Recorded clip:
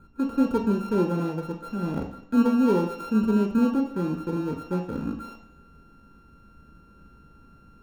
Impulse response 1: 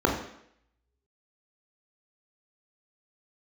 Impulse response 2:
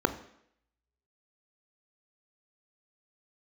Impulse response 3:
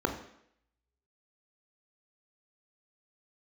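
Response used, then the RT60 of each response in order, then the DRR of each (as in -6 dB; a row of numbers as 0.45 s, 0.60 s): 3; 0.70 s, 0.70 s, 0.70 s; 0.0 dB, 9.5 dB, 4.5 dB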